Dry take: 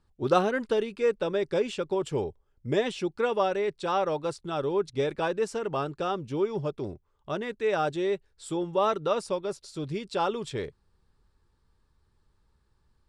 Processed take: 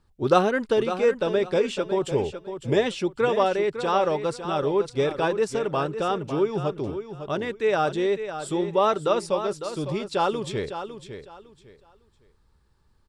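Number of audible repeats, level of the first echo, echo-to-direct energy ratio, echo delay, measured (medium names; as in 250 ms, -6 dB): 3, -10.0 dB, -9.5 dB, 554 ms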